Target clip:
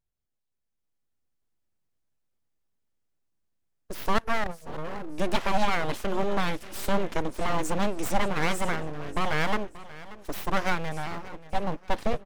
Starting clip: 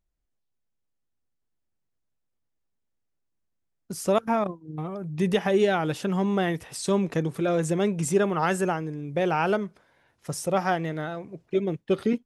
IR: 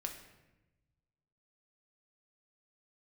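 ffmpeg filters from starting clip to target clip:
-af "aecho=1:1:583|1166|1749:0.133|0.0413|0.0128,aeval=exprs='abs(val(0))':c=same,dynaudnorm=f=320:g=5:m=5.5dB,volume=-4.5dB"

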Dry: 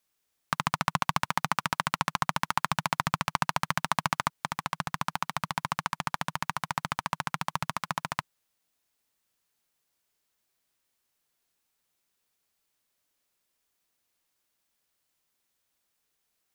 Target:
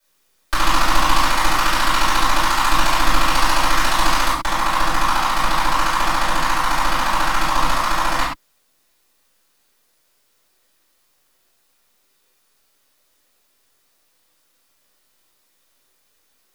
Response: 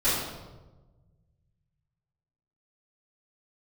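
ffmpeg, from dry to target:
-filter_complex "[0:a]acrossover=split=190|2200[a][b][c];[a]aeval=exprs='abs(val(0))':c=same[d];[b]alimiter=limit=-17dB:level=0:latency=1:release=152[e];[d][e][c]amix=inputs=3:normalize=0[f];[1:a]atrim=start_sample=2205,afade=t=out:st=0.19:d=0.01,atrim=end_sample=8820[g];[f][g]afir=irnorm=-1:irlink=0,volume=3.5dB"

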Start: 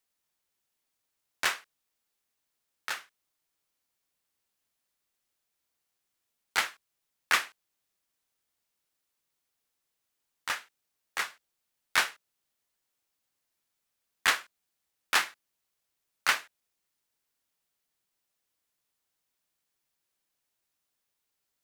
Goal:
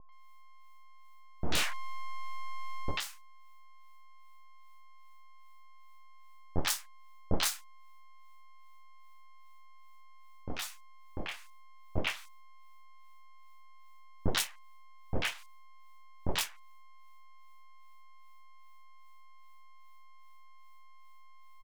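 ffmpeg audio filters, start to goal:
-filter_complex "[0:a]acrossover=split=1500[a][b];[a]aeval=exprs='val(0)*(1-1/2+1/2*cos(2*PI*2.5*n/s))':c=same[c];[b]aeval=exprs='val(0)*(1-1/2-1/2*cos(2*PI*2.5*n/s))':c=same[d];[c][d]amix=inputs=2:normalize=0,aeval=exprs='val(0)+0.00251*sin(2*PI*530*n/s)':c=same,asettb=1/sr,asplit=3[e][f][g];[e]atrim=end=1.444[h];[f]atrim=start=1.44:end=2.91,asetpts=PTS-STARTPTS,afade=t=in:d=0.004:c=qsin,afade=t=out:st=1.466:d=0.004:c=qsin,asplit=2[i][j];[j]highpass=f=720:p=1,volume=29dB,asoftclip=type=tanh:threshold=-16dB[k];[i][k]amix=inputs=2:normalize=0,lowpass=f=1.3k:p=1,volume=-6dB[l];[g]atrim=start=2.906[m];[h][l]acrossfade=d=0.004:c1=hsin:c2=qsin[n];[n][m]acrossfade=d=0.004:c1=qsin:c2=hsin,aeval=exprs='abs(val(0))':c=same,acrossover=split=860|4900[o][p][q];[p]adelay=90[r];[q]adelay=120[s];[o][r][s]amix=inputs=3:normalize=0,volume=5.5dB"

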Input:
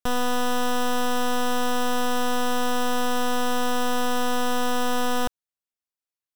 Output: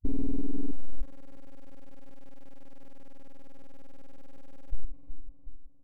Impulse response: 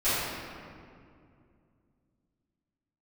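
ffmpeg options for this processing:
-filter_complex "[0:a]alimiter=level_in=5dB:limit=-24dB:level=0:latency=1,volume=-5dB,asetrate=48000,aresample=44100,acrusher=samples=27:mix=1:aa=0.000001,firequalizer=gain_entry='entry(120,0);entry(290,-10);entry(910,-25)':delay=0.05:min_phase=1,asplit=2[a][b];[b]adelay=356,lowpass=f=1.4k:p=1,volume=-13dB,asplit=2[c][d];[d]adelay=356,lowpass=f=1.4k:p=1,volume=0.54,asplit=2[e][f];[f]adelay=356,lowpass=f=1.4k:p=1,volume=0.54,asplit=2[g][h];[h]adelay=356,lowpass=f=1.4k:p=1,volume=0.54,asplit=2[i][j];[j]adelay=356,lowpass=f=1.4k:p=1,volume=0.54,asplit=2[k][l];[l]adelay=356,lowpass=f=1.4k:p=1,volume=0.54[m];[a][c][e][g][i][k][m]amix=inputs=7:normalize=0,volume=29.5dB,asoftclip=hard,volume=-29.5dB,afwtdn=0.0224,volume=13.5dB"

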